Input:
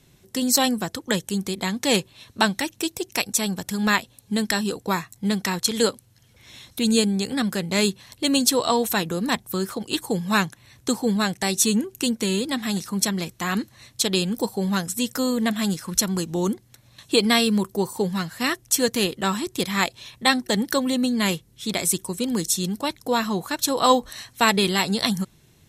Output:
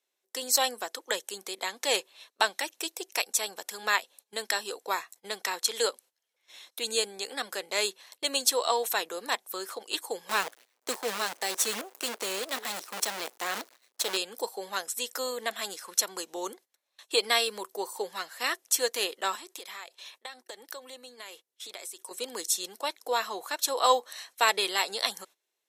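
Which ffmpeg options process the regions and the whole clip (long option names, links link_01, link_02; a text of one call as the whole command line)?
ffmpeg -i in.wav -filter_complex "[0:a]asettb=1/sr,asplit=3[link_01][link_02][link_03];[link_01]atrim=end=10.294[link_04];[link_02]atrim=start=10.29:end=14.17,asetpts=PTS-STARTPTS,afade=type=in:duration=0.004:curve=qsin,afade=type=out:start_time=3.876:duration=0.004:curve=qsin,aeval=exprs='if(lt(val(0),0),0.447*val(0),val(0))':channel_layout=same,equalizer=frequency=140:width=0.65:gain=11.5,acrusher=bits=5:dc=4:mix=0:aa=0.000001[link_05];[link_03]atrim=start=14.166[link_06];[link_04][link_05]acrossfade=duration=0.004:curve1=hsin:curve2=qsin[link_07];[link_07][link_06]acrossfade=duration=0.004:curve1=qsin:curve2=hsin,asettb=1/sr,asplit=3[link_08][link_09][link_10];[link_08]atrim=end=19.354[link_11];[link_09]atrim=start=19.35:end=22.11,asetpts=PTS-STARTPTS,afade=type=in:duration=0.004:curve=qsin,afade=type=out:start_time=2.756:duration=0.004:curve=qsin,highpass=220,acompressor=threshold=-31dB:ratio=16:attack=3.2:release=140:knee=1:detection=peak[link_12];[link_10]atrim=start=22.106[link_13];[link_11][link_12]acrossfade=duration=0.004:curve1=hsin:curve2=qsin[link_14];[link_14][link_13]acrossfade=duration=0.004:curve1=qsin:curve2=hsin,highpass=frequency=450:width=0.5412,highpass=frequency=450:width=1.3066,agate=range=-17dB:threshold=-47dB:ratio=16:detection=peak,volume=-4.5dB" out.wav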